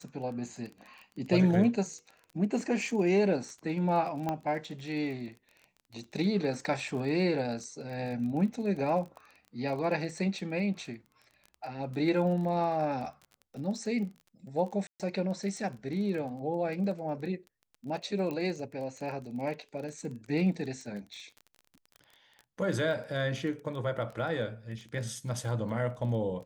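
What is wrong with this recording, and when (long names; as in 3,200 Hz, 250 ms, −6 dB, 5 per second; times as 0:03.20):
surface crackle 24 per second −39 dBFS
0:04.29: click −19 dBFS
0:14.87–0:15.00: drop-out 127 ms
0:18.31: click −24 dBFS
0:21.14: click −37 dBFS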